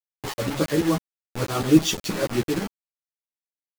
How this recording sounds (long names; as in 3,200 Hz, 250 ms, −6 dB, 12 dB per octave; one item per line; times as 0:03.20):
tremolo saw up 6.2 Hz, depth 90%
a quantiser's noise floor 6 bits, dither none
a shimmering, thickened sound